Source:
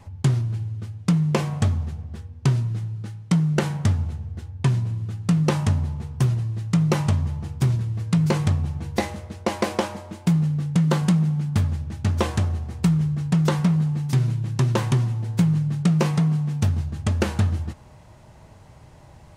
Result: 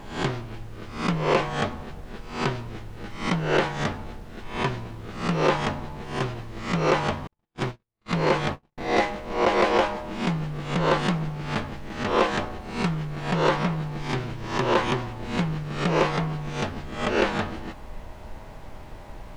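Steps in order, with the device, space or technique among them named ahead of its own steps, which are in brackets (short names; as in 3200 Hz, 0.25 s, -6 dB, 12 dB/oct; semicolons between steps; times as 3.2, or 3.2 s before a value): spectral swells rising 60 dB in 0.48 s; aircraft cabin announcement (BPF 360–3300 Hz; soft clip -17.5 dBFS, distortion -14 dB; brown noise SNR 12 dB); 7.27–8.78 gate -33 dBFS, range -53 dB; gain +5.5 dB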